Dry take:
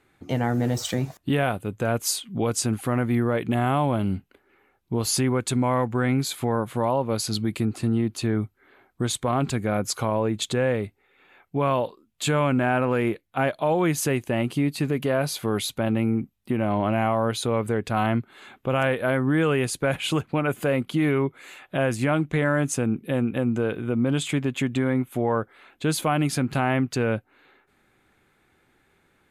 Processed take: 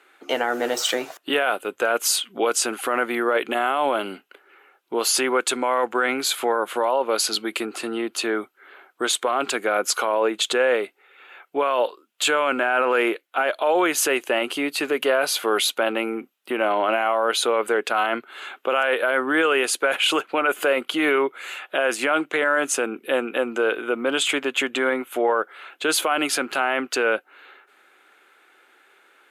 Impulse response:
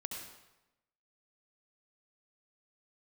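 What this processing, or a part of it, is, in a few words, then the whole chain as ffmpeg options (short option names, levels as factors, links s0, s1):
laptop speaker: -af "highpass=f=370:w=0.5412,highpass=f=370:w=1.3066,equalizer=f=1400:t=o:w=0.43:g=7,equalizer=f=2900:t=o:w=0.5:g=6,alimiter=limit=0.133:level=0:latency=1:release=14,volume=2.11"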